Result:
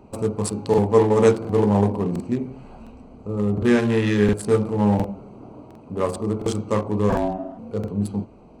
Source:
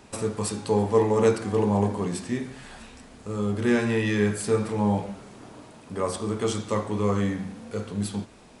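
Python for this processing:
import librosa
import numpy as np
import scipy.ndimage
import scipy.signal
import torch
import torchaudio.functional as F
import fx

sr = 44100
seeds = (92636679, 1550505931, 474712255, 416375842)

y = fx.wiener(x, sr, points=25)
y = fx.ring_mod(y, sr, carrier_hz=470.0, at=(7.09, 7.57), fade=0.02)
y = fx.buffer_crackle(y, sr, first_s=0.69, period_s=0.71, block=2048, kind='repeat')
y = F.gain(torch.from_numpy(y), 5.0).numpy()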